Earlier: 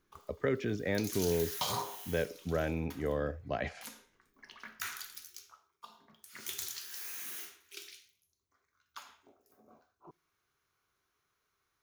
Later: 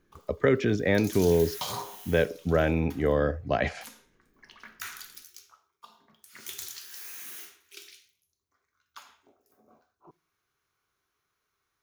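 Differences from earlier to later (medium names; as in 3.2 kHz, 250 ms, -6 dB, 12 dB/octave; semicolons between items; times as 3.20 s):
speech +9.0 dB; background: send +6.0 dB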